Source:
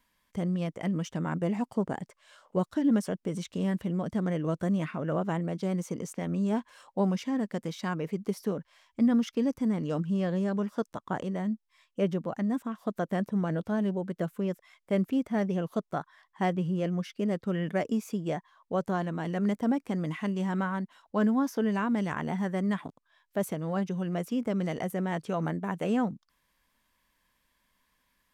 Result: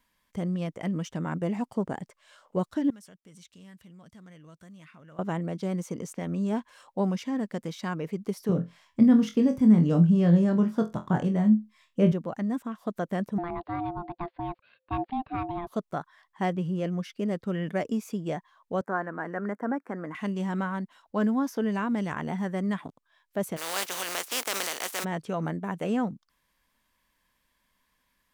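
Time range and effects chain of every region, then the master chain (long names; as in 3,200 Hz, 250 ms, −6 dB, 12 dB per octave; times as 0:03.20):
0:02.90–0:05.19: guitar amp tone stack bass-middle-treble 5-5-5 + downward compressor 2 to 1, threshold −49 dBFS
0:08.49–0:12.12: parametric band 140 Hz +12.5 dB 1.7 octaves + flutter between parallel walls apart 4 metres, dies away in 0.21 s
0:13.38–0:15.67: elliptic low-pass filter 4,000 Hz + ring modulation 520 Hz
0:18.81–0:20.15: high-pass filter 280 Hz + high shelf with overshoot 2,300 Hz −12.5 dB, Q 3
0:23.56–0:25.03: compressing power law on the bin magnitudes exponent 0.32 + high-pass filter 450 Hz
whole clip: no processing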